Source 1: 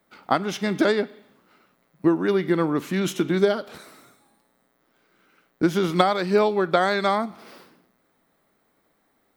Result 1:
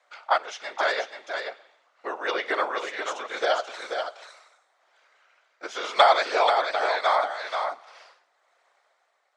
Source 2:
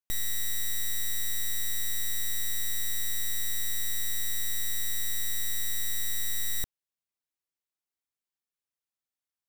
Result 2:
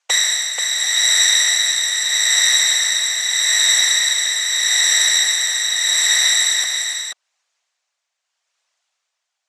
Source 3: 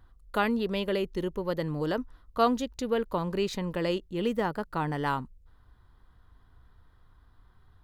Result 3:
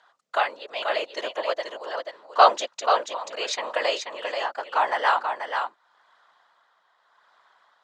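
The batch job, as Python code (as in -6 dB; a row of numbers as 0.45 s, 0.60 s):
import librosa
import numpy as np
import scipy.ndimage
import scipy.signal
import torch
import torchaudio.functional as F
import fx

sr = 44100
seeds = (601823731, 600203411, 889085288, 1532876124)

y = x * (1.0 - 0.71 / 2.0 + 0.71 / 2.0 * np.cos(2.0 * np.pi * 0.81 * (np.arange(len(x)) / sr)))
y = fx.whisperise(y, sr, seeds[0])
y = scipy.signal.sosfilt(scipy.signal.ellip(3, 1.0, 80, [630.0, 7100.0], 'bandpass', fs=sr, output='sos'), y)
y = y + 10.0 ** (-6.0 / 20.0) * np.pad(y, (int(484 * sr / 1000.0), 0))[:len(y)]
y = librosa.util.normalize(y) * 10.0 ** (-2 / 20.0)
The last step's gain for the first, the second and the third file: +5.5 dB, +25.0 dB, +11.5 dB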